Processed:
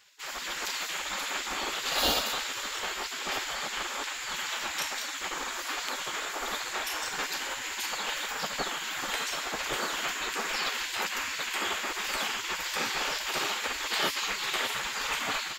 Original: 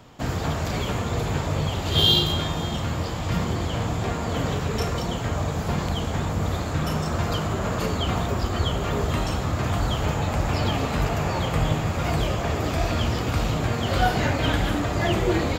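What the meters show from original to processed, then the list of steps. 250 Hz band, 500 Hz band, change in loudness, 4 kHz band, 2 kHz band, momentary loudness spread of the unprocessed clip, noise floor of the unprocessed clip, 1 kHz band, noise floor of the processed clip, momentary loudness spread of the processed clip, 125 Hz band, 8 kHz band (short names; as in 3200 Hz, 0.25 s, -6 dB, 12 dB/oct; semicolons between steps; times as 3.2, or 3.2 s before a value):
-18.5 dB, -12.5 dB, -6.0 dB, -3.5 dB, +1.0 dB, 5 LU, -28 dBFS, -5.5 dB, -38 dBFS, 5 LU, -32.0 dB, +4.0 dB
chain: notch 1000 Hz, Q 8.5; spectral gate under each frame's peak -20 dB weak; AGC gain up to 4 dB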